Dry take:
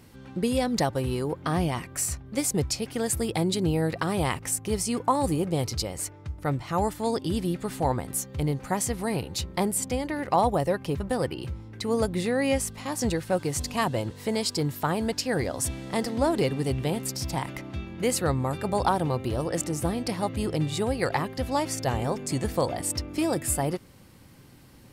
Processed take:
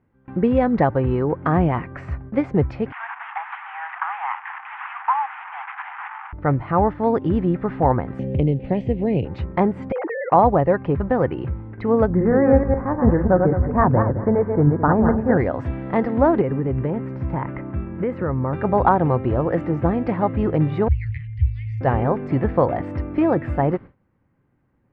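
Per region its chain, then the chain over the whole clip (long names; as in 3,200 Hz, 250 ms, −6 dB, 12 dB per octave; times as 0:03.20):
0:02.92–0:06.33: linear delta modulator 16 kbit/s, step −29 dBFS + Butterworth high-pass 780 Hz 96 dB per octave
0:08.19–0:09.25: drawn EQ curve 570 Hz 0 dB, 1,300 Hz −28 dB, 2,800 Hz +5 dB, 6,900 Hz −5 dB + multiband upward and downward compressor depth 70%
0:09.92–0:10.32: three sine waves on the formant tracks + downward compressor, threshold −30 dBFS
0:12.10–0:15.37: feedback delay that plays each chunk backwards 107 ms, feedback 43%, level −4 dB + Butterworth low-pass 1,700 Hz + low-shelf EQ 120 Hz +8 dB
0:16.41–0:18.53: downward compressor, threshold −25 dBFS + parametric band 5,000 Hz −13 dB 1.5 octaves + notch filter 740 Hz, Q 6.3
0:20.88–0:21.81: Chebyshev band-stop filter 110–2,100 Hz, order 5 + tilt shelving filter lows +8.5 dB, about 1,100 Hz
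whole clip: noise gate with hold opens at −35 dBFS; low-pass filter 1,900 Hz 24 dB per octave; level +8 dB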